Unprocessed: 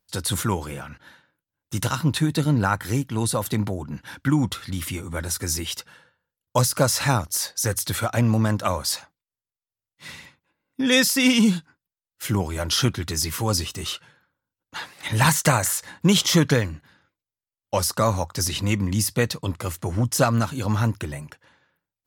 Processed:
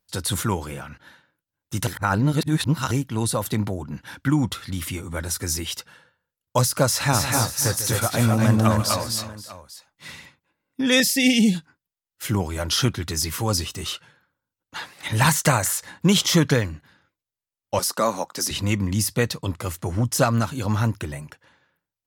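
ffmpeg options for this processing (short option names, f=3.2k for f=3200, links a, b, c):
-filter_complex "[0:a]asplit=3[a][b][c];[a]afade=t=out:st=7.12:d=0.02[d];[b]aecho=1:1:146|244|262|527|562|845:0.237|0.501|0.668|0.112|0.112|0.133,afade=t=in:st=7.12:d=0.02,afade=t=out:st=10.11:d=0.02[e];[c]afade=t=in:st=10.11:d=0.02[f];[d][e][f]amix=inputs=3:normalize=0,asettb=1/sr,asplit=3[g][h][i];[g]atrim=end=11.004[j];[h]atrim=start=11:end=11.55,asetpts=PTS-STARTPTS,afade=t=in:d=0.004:c=qsin,afade=t=out:st=0.546:d=0.004:c=qsin,asuperstop=centerf=1200:order=12:qfactor=1.4[k];[i]atrim=start=11.546[l];[j][k]acrossfade=d=0.004:c1=hsin:c2=qsin[m];[m][l]acrossfade=d=0.004:c1=qsin:c2=hsin,asettb=1/sr,asplit=3[n][o][p];[n]atrim=end=17.794[q];[o]atrim=start=17.79:end=18.51,asetpts=PTS-STARTPTS,afade=t=in:d=0.004:c=qsin,afade=t=out:st=0.716:d=0.004:c=qsin,highpass=f=200:w=0.5412,highpass=f=200:w=1.3066[r];[p]atrim=start=18.506[s];[q][r]acrossfade=d=0.004:c1=hsin:c2=qsin[t];[t][s]acrossfade=d=0.004:c1=qsin:c2=hsin,asplit=3[u][v][w];[u]atrim=end=1.872[x];[v]atrim=start=1.868:end=2.912,asetpts=PTS-STARTPTS,areverse[y];[w]atrim=start=2.908[z];[x][y]acrossfade=d=0.004:c1=hsin:c2=hsin[aa];[aa][z]acrossfade=d=0.004:c1=hsin:c2=hsin"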